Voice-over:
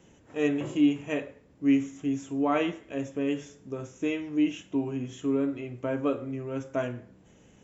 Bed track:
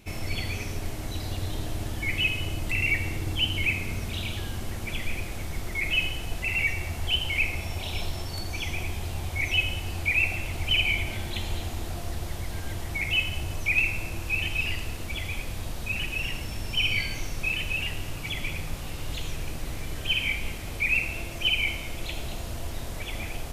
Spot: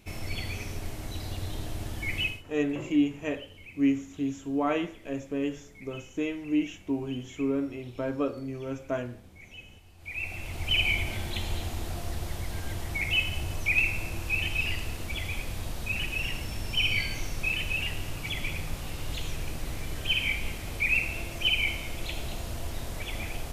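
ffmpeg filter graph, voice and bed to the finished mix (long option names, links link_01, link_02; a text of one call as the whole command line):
ffmpeg -i stem1.wav -i stem2.wav -filter_complex "[0:a]adelay=2150,volume=-1.5dB[link_01];[1:a]volume=18dB,afade=type=out:start_time=2.22:duration=0.21:silence=0.112202,afade=type=in:start_time=9.98:duration=0.86:silence=0.0841395[link_02];[link_01][link_02]amix=inputs=2:normalize=0" out.wav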